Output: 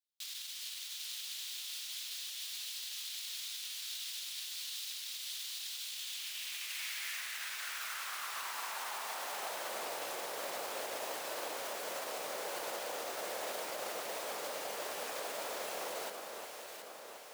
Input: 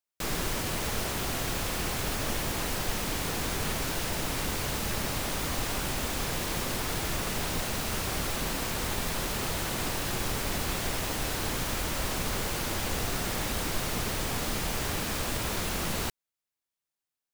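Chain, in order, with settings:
0:06.67–0:07.21: Bessel high-pass filter 420 Hz, order 2
brickwall limiter −25 dBFS, peak gain reduction 8 dB
high-pass filter sweep 3,600 Hz → 550 Hz, 0:05.88–0:09.80
on a send: delay that swaps between a low-pass and a high-pass 361 ms, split 1,600 Hz, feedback 77%, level −4 dB
on the sum: level −7.5 dB

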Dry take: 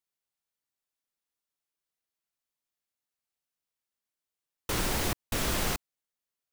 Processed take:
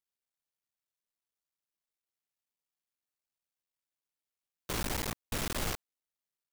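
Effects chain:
sub-harmonics by changed cycles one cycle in 3, muted
level −3.5 dB

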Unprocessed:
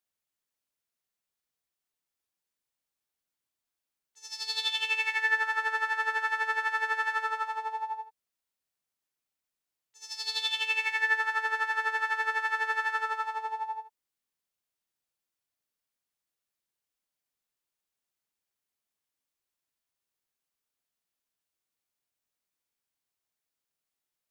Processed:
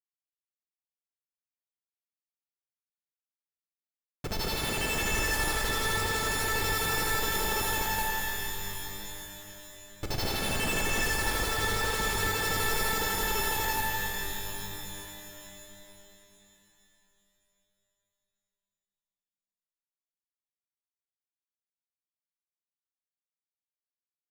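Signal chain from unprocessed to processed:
downward compressor 10 to 1, threshold −30 dBFS, peak gain reduction 9.5 dB
comparator with hysteresis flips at −35.5 dBFS
reverb with rising layers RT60 3.4 s, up +12 semitones, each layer −2 dB, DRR 1.5 dB
level +8 dB

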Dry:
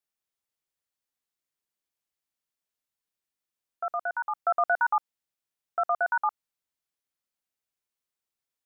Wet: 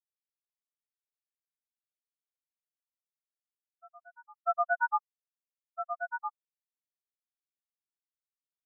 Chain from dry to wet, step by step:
every bin expanded away from the loudest bin 4 to 1
level −1.5 dB

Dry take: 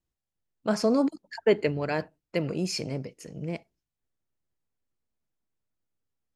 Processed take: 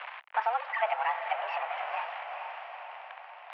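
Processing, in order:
converter with a step at zero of −27 dBFS
single-sideband voice off tune +240 Hz 510–2,600 Hz
tempo change 1.8×
feedback delay with all-pass diffusion 460 ms, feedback 49%, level −8 dB
multiband upward and downward compressor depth 40%

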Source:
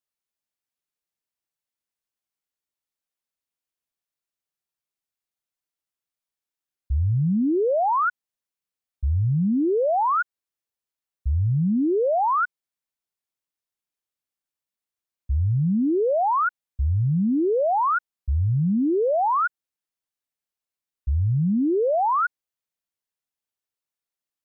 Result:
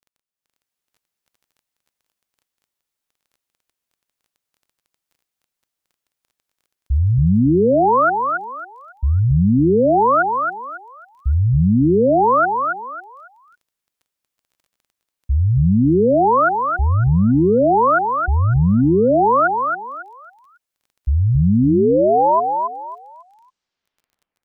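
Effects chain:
turntable brake at the end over 2.93 s
automatic gain control gain up to 12 dB
repeating echo 275 ms, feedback 29%, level −4.5 dB
surface crackle 17 per second −40 dBFS
level −6 dB

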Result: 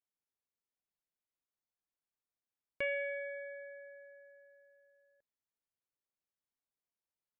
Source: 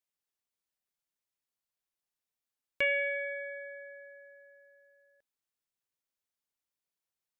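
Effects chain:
high-shelf EQ 2,000 Hz −11.5 dB
level −2.5 dB

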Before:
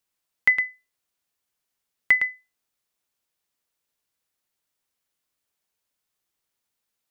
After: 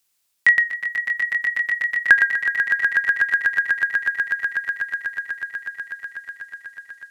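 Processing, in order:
pitch glide at a constant tempo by −12 semitones starting unshifted
high-shelf EQ 2,300 Hz +11 dB
echo that builds up and dies away 123 ms, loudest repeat 8, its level −9 dB
level +2.5 dB

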